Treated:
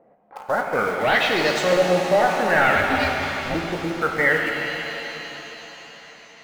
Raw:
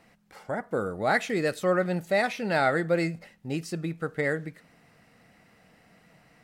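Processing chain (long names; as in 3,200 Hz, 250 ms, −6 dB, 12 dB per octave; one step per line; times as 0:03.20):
mid-hump overdrive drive 21 dB, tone 4,100 Hz, clips at −11 dBFS
auto-filter low-pass saw up 0.58 Hz 530–7,800 Hz
in parallel at −3 dB: centre clipping without the shift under −26 dBFS
0:02.75–0:03.55: on the sum: ring modulation 250 Hz
reverb with rising layers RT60 3.7 s, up +7 semitones, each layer −8 dB, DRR 1.5 dB
level −7.5 dB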